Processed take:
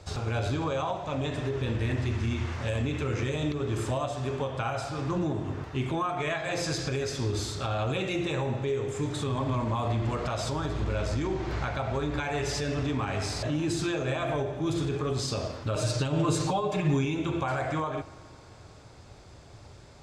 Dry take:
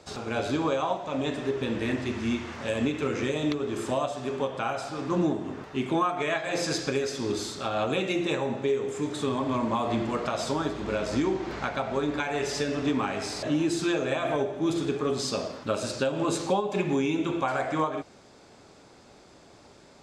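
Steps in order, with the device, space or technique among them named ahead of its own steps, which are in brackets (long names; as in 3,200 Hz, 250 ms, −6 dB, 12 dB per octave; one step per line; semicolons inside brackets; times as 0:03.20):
car stereo with a boomy subwoofer (low shelf with overshoot 150 Hz +11.5 dB, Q 1.5; brickwall limiter −21 dBFS, peak gain reduction 9 dB)
0:15.75–0:17.05: comb filter 6.6 ms, depth 89%
delay with a low-pass on its return 87 ms, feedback 83%, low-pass 2,700 Hz, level −22.5 dB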